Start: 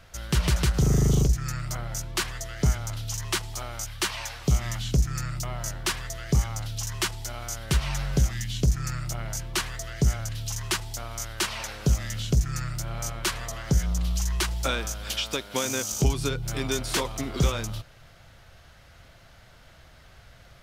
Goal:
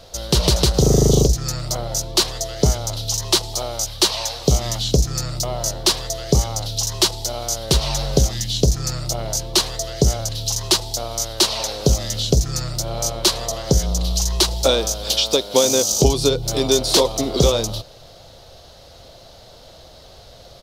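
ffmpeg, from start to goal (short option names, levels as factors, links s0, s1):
-af "firequalizer=gain_entry='entry(140,0);entry(490,12);entry(1500,-6);entry(2200,-5);entry(4000,12);entry(7600,4)':delay=0.05:min_phase=1,volume=1.68"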